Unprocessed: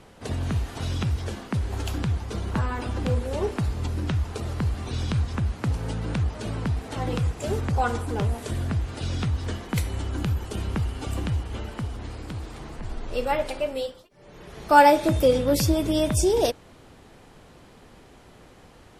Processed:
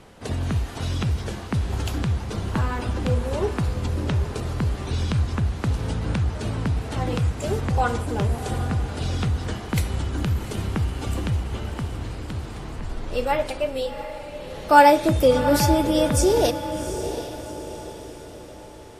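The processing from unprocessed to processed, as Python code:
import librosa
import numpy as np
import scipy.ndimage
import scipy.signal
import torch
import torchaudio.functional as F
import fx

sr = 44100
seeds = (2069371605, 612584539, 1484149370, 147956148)

y = fx.echo_diffused(x, sr, ms=744, feedback_pct=45, wet_db=-10.0)
y = F.gain(torch.from_numpy(y), 2.0).numpy()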